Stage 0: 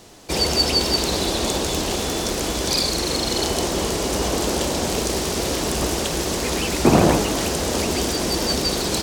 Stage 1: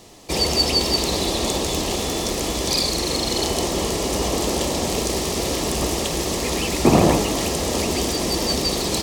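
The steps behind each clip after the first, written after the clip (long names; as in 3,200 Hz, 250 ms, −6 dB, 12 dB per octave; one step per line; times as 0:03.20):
notch filter 1,500 Hz, Q 5.3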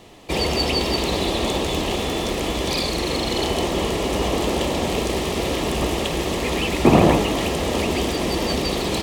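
high shelf with overshoot 4,000 Hz −7 dB, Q 1.5
level +1 dB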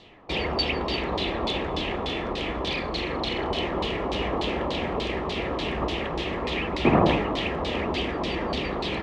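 auto-filter low-pass saw down 3.4 Hz 980–4,300 Hz
level −6.5 dB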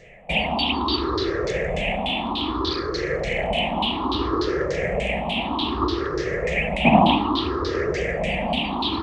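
rippled gain that drifts along the octave scale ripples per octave 0.53, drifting +0.62 Hz, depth 22 dB
level −1 dB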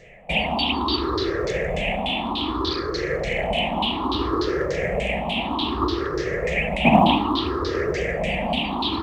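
floating-point word with a short mantissa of 6 bits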